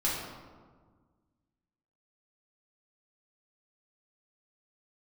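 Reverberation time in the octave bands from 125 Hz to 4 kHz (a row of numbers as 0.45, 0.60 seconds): 2.1, 2.0, 1.6, 1.5, 1.1, 0.80 seconds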